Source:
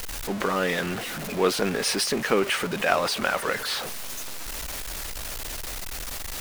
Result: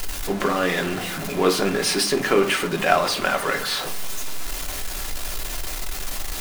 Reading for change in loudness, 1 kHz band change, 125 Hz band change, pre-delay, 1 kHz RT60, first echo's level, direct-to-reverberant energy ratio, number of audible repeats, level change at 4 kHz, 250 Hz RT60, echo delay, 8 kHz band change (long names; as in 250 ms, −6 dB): +3.5 dB, +4.5 dB, +3.5 dB, 3 ms, 0.55 s, no echo audible, 4.0 dB, no echo audible, +3.5 dB, 0.75 s, no echo audible, +3.0 dB